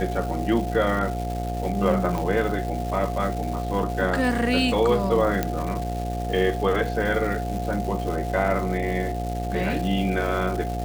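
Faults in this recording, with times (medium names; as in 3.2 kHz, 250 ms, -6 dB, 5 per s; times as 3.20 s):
buzz 60 Hz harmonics 14 -29 dBFS
crackle 540 per s -31 dBFS
whine 710 Hz -31 dBFS
2.18 s: pop -15 dBFS
5.43 s: pop -9 dBFS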